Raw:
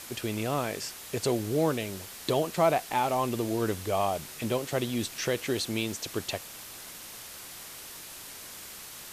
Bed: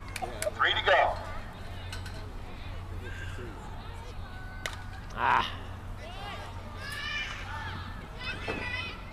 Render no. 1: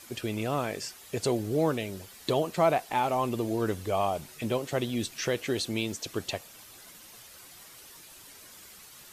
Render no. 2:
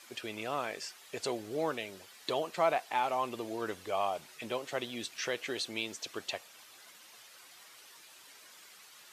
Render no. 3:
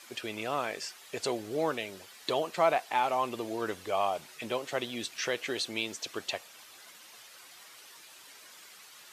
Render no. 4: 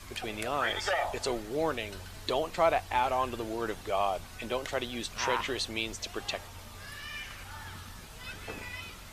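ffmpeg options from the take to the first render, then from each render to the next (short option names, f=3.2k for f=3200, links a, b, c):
-af "afftdn=nr=9:nf=-45"
-af "highpass=f=940:p=1,highshelf=f=7.1k:g=-11.5"
-af "volume=3dB"
-filter_complex "[1:a]volume=-7dB[a];[0:a][a]amix=inputs=2:normalize=0"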